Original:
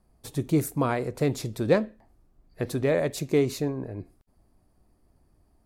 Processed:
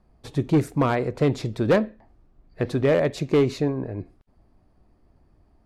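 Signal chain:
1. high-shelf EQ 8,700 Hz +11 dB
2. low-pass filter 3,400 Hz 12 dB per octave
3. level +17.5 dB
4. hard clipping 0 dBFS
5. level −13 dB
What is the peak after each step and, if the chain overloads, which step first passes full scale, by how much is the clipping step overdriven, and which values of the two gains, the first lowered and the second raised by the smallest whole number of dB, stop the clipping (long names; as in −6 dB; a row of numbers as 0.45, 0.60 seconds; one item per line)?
−8.5, −9.0, +8.5, 0.0, −13.0 dBFS
step 3, 8.5 dB
step 3 +8.5 dB, step 5 −4 dB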